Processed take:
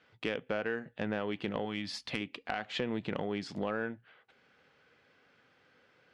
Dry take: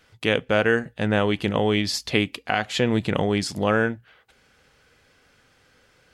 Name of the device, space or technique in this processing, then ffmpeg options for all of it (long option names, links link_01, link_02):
AM radio: -filter_complex "[0:a]highpass=150,lowpass=3400,acompressor=threshold=-25dB:ratio=4,asoftclip=type=tanh:threshold=-13.5dB,asettb=1/sr,asplit=3[link_01][link_02][link_03];[link_01]atrim=end=1.654[link_04];[link_02]atrim=start=1.65:end=2.21,asetpts=PTS-STARTPTS,afade=type=in:duration=0.004:curve=qsin,afade=type=out:start_time=0.556:duration=0.004:curve=qsin,equalizer=frequency=400:width_type=o:width=0.33:gain=-12,equalizer=frequency=630:width_type=o:width=0.33:gain=-4,equalizer=frequency=10000:width_type=o:width=0.33:gain=11[link_05];[link_03]atrim=start=2.206[link_06];[link_04][link_05]acrossfade=duration=0.004:curve1=hsin:curve2=qsin[link_07];[link_07][link_06]acrossfade=duration=0.004:curve1=qsin:curve2=hsin,volume=-5.5dB"